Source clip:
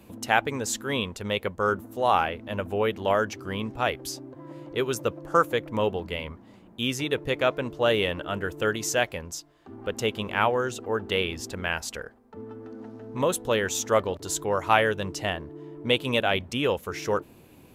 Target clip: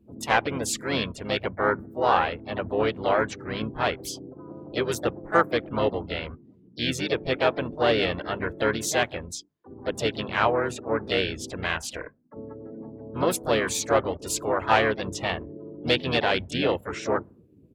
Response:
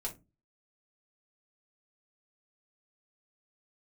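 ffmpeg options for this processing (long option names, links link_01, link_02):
-filter_complex "[0:a]afftdn=noise_reduction=29:noise_floor=-43,bandreject=frequency=50:width_type=h:width=6,bandreject=frequency=100:width_type=h:width=6,bandreject=frequency=150:width_type=h:width=6,bandreject=frequency=200:width_type=h:width=6,bandreject=frequency=250:width_type=h:width=6,acontrast=35,asplit=4[link_01][link_02][link_03][link_04];[link_02]asetrate=29433,aresample=44100,atempo=1.49831,volume=-8dB[link_05];[link_03]asetrate=55563,aresample=44100,atempo=0.793701,volume=-7dB[link_06];[link_04]asetrate=66075,aresample=44100,atempo=0.66742,volume=-18dB[link_07];[link_01][link_05][link_06][link_07]amix=inputs=4:normalize=0,volume=-5.5dB"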